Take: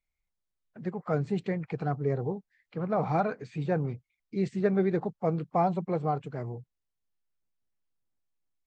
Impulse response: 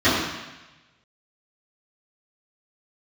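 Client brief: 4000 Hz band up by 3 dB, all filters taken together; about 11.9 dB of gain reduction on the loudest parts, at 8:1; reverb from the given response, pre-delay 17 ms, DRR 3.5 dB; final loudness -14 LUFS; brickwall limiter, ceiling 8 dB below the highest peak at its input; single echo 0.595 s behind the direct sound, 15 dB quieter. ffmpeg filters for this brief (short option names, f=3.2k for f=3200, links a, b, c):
-filter_complex "[0:a]equalizer=f=4k:t=o:g=3.5,acompressor=threshold=-33dB:ratio=8,alimiter=level_in=7dB:limit=-24dB:level=0:latency=1,volume=-7dB,aecho=1:1:595:0.178,asplit=2[a][b];[1:a]atrim=start_sample=2205,adelay=17[c];[b][c]afir=irnorm=-1:irlink=0,volume=-26dB[d];[a][d]amix=inputs=2:normalize=0,volume=25.5dB"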